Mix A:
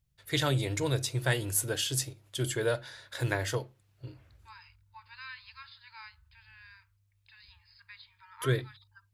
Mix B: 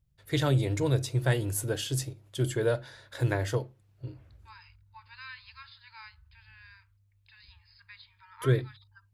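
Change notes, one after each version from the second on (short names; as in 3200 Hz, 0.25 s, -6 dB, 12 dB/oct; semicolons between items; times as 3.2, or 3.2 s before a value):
first voice: add tilt shelf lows +4.5 dB, about 930 Hz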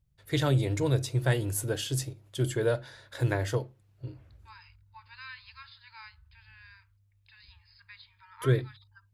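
none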